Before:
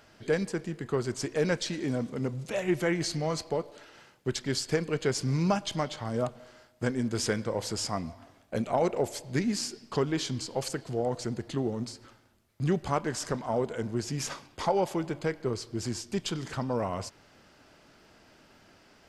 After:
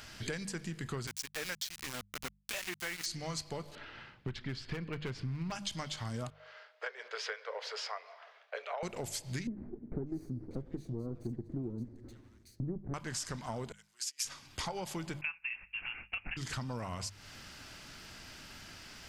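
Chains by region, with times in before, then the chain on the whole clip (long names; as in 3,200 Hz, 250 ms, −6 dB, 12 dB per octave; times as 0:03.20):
0:01.07–0:03.06: meter weighting curve A + centre clipping without the shift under −33.5 dBFS
0:03.75–0:05.52: high-frequency loss of the air 370 metres + hard clipping −23 dBFS
0:06.30–0:08.83: Chebyshev high-pass with heavy ripple 420 Hz, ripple 3 dB + high-frequency loss of the air 290 metres
0:09.47–0:12.94: lower of the sound and its delayed copy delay 0.47 ms + drawn EQ curve 160 Hz 0 dB, 340 Hz +10 dB, 2,700 Hz −28 dB + multiband delay without the direct sound lows, highs 590 ms, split 2,000 Hz
0:13.72–0:14.25: high-pass filter 900 Hz + spectral tilt +3 dB per octave + expander for the loud parts 2.5 to 1, over −45 dBFS
0:15.21–0:16.37: downward expander −41 dBFS + high-pass with resonance 660 Hz, resonance Q 2.3 + voice inversion scrambler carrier 3,100 Hz
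whole clip: parametric band 480 Hz −14.5 dB 2.7 octaves; mains-hum notches 50/100/150/200 Hz; downward compressor 6 to 1, threshold −50 dBFS; level +13 dB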